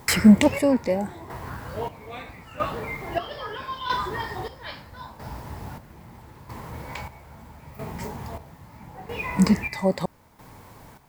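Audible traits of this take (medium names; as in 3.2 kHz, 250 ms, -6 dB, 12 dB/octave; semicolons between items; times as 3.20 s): a quantiser's noise floor 10-bit, dither none; chopped level 0.77 Hz, depth 65%, duty 45%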